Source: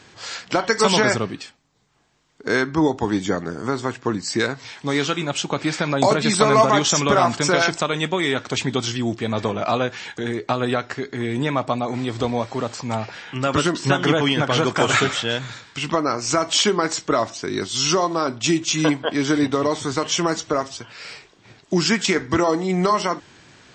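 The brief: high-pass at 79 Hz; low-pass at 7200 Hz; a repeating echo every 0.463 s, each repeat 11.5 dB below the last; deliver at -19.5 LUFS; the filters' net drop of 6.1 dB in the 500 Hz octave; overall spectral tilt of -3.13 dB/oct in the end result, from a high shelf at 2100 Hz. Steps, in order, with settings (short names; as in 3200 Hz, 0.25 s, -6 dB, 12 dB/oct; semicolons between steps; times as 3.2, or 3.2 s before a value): HPF 79 Hz; LPF 7200 Hz; bell 500 Hz -8.5 dB; high shelf 2100 Hz +3.5 dB; feedback echo 0.463 s, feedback 27%, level -11.5 dB; gain +2 dB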